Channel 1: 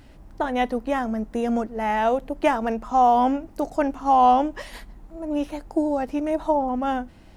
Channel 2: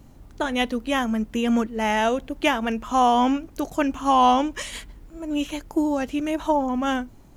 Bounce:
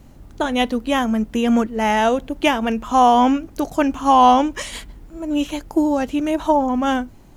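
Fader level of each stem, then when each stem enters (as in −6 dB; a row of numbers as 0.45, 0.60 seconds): −7.5, +3.0 decibels; 0.00, 0.00 seconds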